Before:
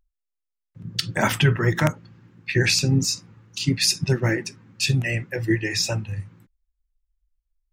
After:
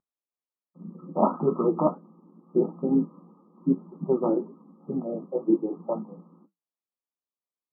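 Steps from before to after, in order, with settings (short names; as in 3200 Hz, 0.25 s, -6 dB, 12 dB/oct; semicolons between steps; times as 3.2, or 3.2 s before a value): brick-wall FIR band-pass 170–1300 Hz; flange 2 Hz, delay 7.4 ms, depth 4.9 ms, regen -69%; gain +6.5 dB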